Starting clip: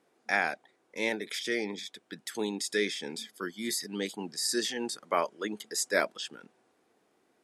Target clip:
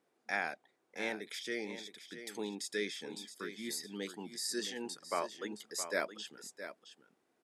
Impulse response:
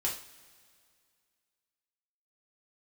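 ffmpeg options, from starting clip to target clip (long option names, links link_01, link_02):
-af "aecho=1:1:668:0.282,volume=-7.5dB"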